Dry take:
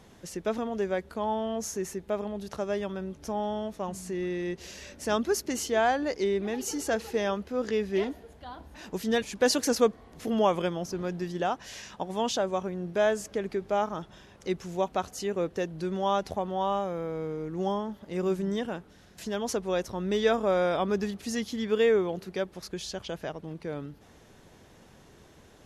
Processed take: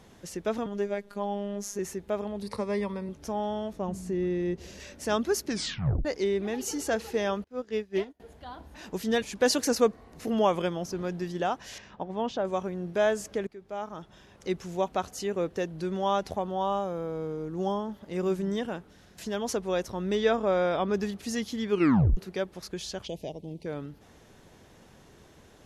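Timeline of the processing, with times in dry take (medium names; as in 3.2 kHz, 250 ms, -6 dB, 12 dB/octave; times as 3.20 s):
0.66–1.79 s: robot voice 202 Hz
2.42–3.09 s: rippled EQ curve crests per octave 0.93, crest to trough 14 dB
3.73–4.80 s: tilt shelf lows +5.5 dB, about 640 Hz
5.46 s: tape stop 0.59 s
7.44–8.20 s: upward expansion 2.5:1, over -43 dBFS
9.65–10.34 s: band-stop 3.3 kHz, Q 10
11.78–12.45 s: tape spacing loss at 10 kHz 26 dB
13.47–14.50 s: fade in, from -19.5 dB
16.44–17.89 s: peaking EQ 2.1 kHz -7 dB 0.56 oct
20.15–20.94 s: distance through air 53 m
21.71 s: tape stop 0.46 s
23.07–23.66 s: Butterworth band-stop 1.4 kHz, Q 0.7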